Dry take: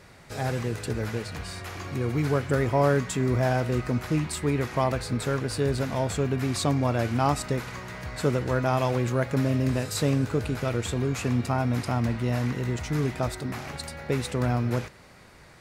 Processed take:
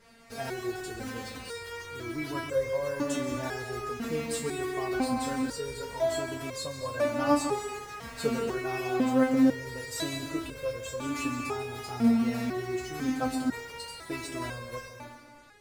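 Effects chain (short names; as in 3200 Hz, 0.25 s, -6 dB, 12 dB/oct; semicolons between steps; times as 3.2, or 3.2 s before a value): in parallel at -11 dB: bit-crush 6-bit; on the sum: plate-style reverb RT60 1.5 s, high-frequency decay 0.8×, pre-delay 0.115 s, DRR 6 dB; stepped resonator 2 Hz 230–530 Hz; gain +9 dB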